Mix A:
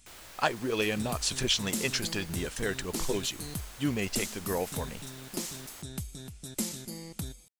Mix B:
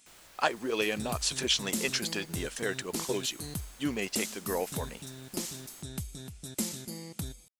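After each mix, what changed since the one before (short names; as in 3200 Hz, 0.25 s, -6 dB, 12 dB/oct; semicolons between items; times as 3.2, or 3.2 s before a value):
speech: add HPF 240 Hz 12 dB/oct; first sound -6.5 dB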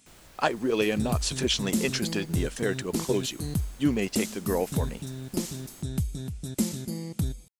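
master: add low shelf 420 Hz +11.5 dB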